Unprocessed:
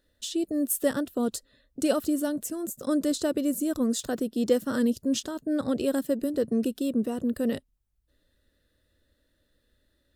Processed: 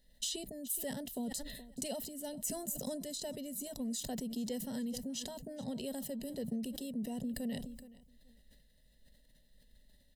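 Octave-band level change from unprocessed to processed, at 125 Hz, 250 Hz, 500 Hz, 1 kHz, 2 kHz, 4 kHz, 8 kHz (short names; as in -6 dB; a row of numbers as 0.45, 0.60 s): -4.5, -13.5, -15.0, -11.5, -13.5, -5.0, -5.0 dB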